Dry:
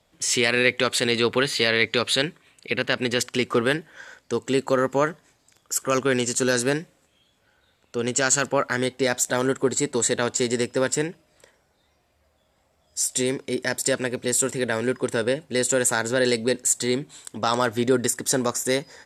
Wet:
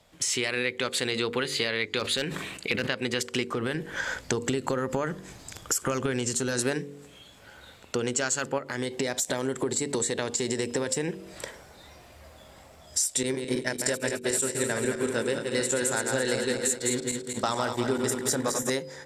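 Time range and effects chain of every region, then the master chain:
1.99–2.87 overloaded stage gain 12.5 dB + sustainer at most 82 dB/s
3.52–6.59 low shelf 120 Hz +11 dB + compressor 5:1, threshold -25 dBFS
8.58–11.08 bell 1400 Hz -6.5 dB 0.3 oct + compressor 3:1, threshold -29 dBFS
13.23–18.7 regenerating reverse delay 0.108 s, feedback 74%, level -5 dB + expander -22 dBFS
whole clip: AGC; de-hum 47.54 Hz, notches 11; compressor 4:1, threshold -32 dBFS; gain +4.5 dB

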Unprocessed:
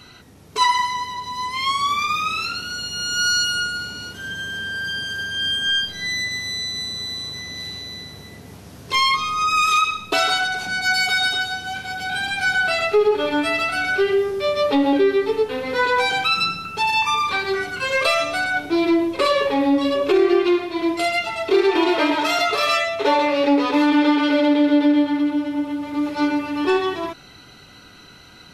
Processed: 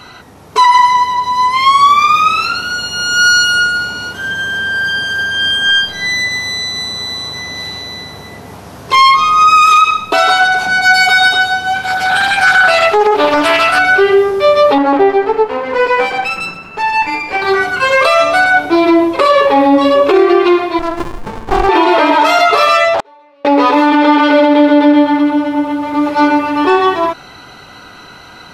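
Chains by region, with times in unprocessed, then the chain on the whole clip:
11.83–13.79 high shelf 5200 Hz +6.5 dB + Doppler distortion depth 0.45 ms
14.78–17.42 minimum comb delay 0.41 ms + LPF 1500 Hz 6 dB/oct + low shelf 180 Hz -10.5 dB
20.79–21.69 HPF 190 Hz + running maximum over 65 samples
22.94–23.45 flipped gate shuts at -17 dBFS, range -39 dB + Doppler distortion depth 0.73 ms
whole clip: bell 920 Hz +10 dB 1.9 oct; limiter -7 dBFS; gain +6 dB

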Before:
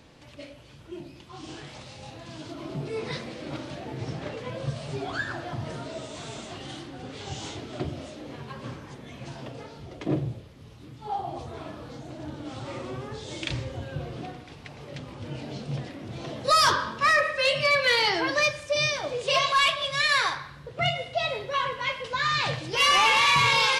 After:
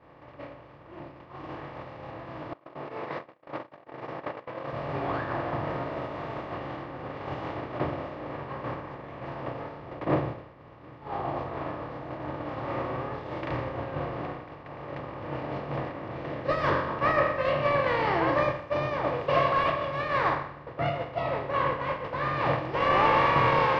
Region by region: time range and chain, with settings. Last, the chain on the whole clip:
2.53–4.73 gate -36 dBFS, range -32 dB + HPF 400 Hz
16.17–16.89 band shelf 930 Hz -10 dB 1.1 oct + doubler 13 ms -10.5 dB
whole clip: per-bin compression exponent 0.4; LPF 1100 Hz 12 dB/oct; expander -17 dBFS

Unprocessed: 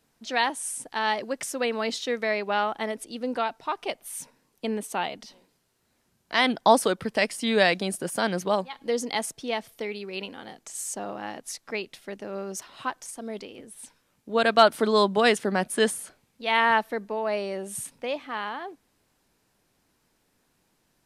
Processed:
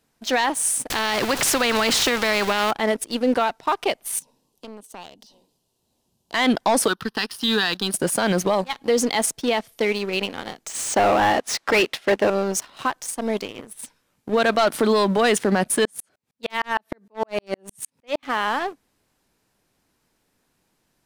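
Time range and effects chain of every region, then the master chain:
0.9–2.71 zero-crossing step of -39 dBFS + high shelf 4900 Hz -10 dB + spectral compressor 2:1
4.19–6.34 band shelf 1700 Hz -14.5 dB 1.1 oct + compressor 2.5:1, threshold -50 dBFS
6.88–7.94 low shelf 270 Hz -10 dB + fixed phaser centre 2200 Hz, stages 6
10.7–12.3 high shelf 8700 Hz -8 dB + overdrive pedal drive 25 dB, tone 3000 Hz, clips at -17 dBFS + upward expander, over -39 dBFS
15.85–18.23 HPF 74 Hz + dB-ramp tremolo swelling 6.5 Hz, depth 38 dB
whole clip: sample leveller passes 2; limiter -15 dBFS; gain +4 dB

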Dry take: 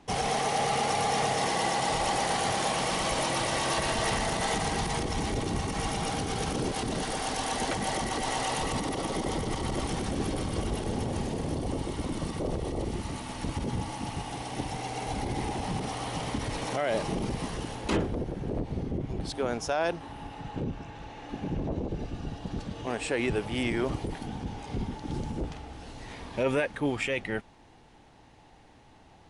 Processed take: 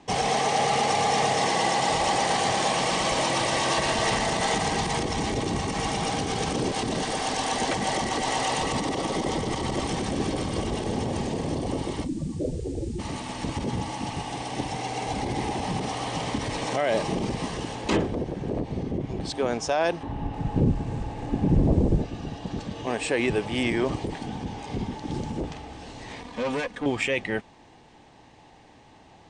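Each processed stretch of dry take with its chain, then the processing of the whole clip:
12.03–12.98 spectral contrast raised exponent 2.7 + added noise blue -51 dBFS + doubler 33 ms -14 dB
20.03–22.02 tilt -3.5 dB/oct + lo-fi delay 0.306 s, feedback 55%, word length 7-bit, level -13.5 dB
26.21–26.86 comb 4.1 ms, depth 63% + tube stage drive 28 dB, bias 0.75
whole clip: steep low-pass 9200 Hz 96 dB/oct; low shelf 64 Hz -10.5 dB; notch 1400 Hz, Q 9.6; gain +4.5 dB

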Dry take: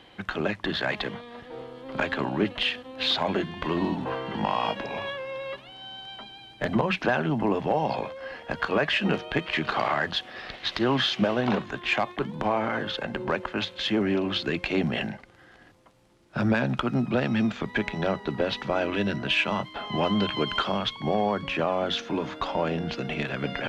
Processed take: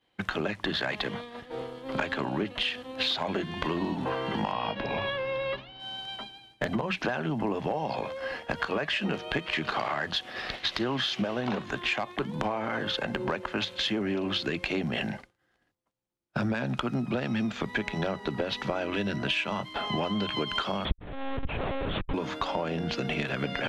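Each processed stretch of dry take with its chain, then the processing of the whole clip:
4.52–5.8 LPF 4700 Hz 24 dB/oct + low shelf 150 Hz +8.5 dB
20.85–22.14 Schmitt trigger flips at -30.5 dBFS + air absorption 170 m + monotone LPC vocoder at 8 kHz 270 Hz
whole clip: expander -38 dBFS; high shelf 5800 Hz +6.5 dB; compressor, threshold -30 dBFS; gain +3.5 dB

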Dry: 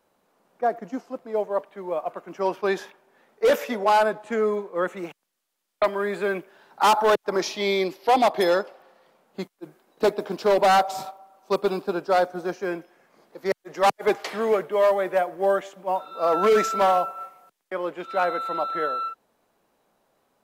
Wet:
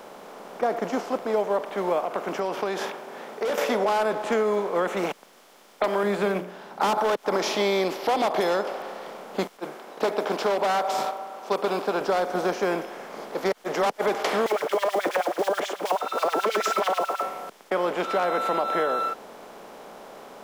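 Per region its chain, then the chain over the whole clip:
2.04–3.58 HPF 41 Hz + compressor, threshold -35 dBFS
6.03–6.98 bell 180 Hz +13 dB 0.94 oct + notches 60/120/180/240/300/360/420/480/540/600 Hz + upward expander, over -39 dBFS
9.57–12.01 LPF 1300 Hz 6 dB/oct + tilt +3.5 dB/oct
14.46–17.24 block floating point 5-bit + LFO high-pass sine 9.3 Hz 260–3900 Hz
whole clip: per-bin compression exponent 0.6; limiter -11 dBFS; compressor, threshold -20 dBFS

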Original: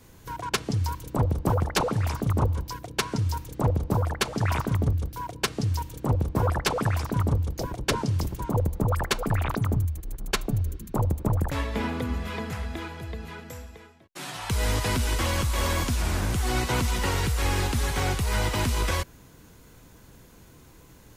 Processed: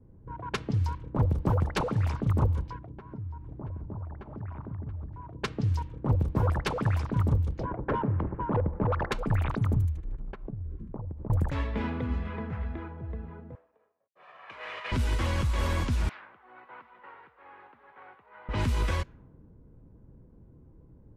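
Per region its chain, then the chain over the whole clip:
2.76–5.36 notch 490 Hz, Q 5.1 + compressor 4:1, threshold -35 dBFS + echo 0.679 s -11 dB
7.65–9.12 LPF 1700 Hz 24 dB/oct + overdrive pedal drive 19 dB, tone 1100 Hz, clips at -14.5 dBFS
10.18–11.3 transient shaper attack +8 dB, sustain +1 dB + compressor 12:1, threshold -31 dBFS
13.55–14.92 minimum comb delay 1.7 ms + HPF 800 Hz + dynamic EQ 2500 Hz, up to +6 dB, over -51 dBFS, Q 1.4
16.09–18.49 HPF 1400 Hz + air absorption 330 m
whole clip: notch 710 Hz, Q 15; low-pass opened by the level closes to 460 Hz, open at -20.5 dBFS; tone controls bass +4 dB, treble -8 dB; gain -4.5 dB

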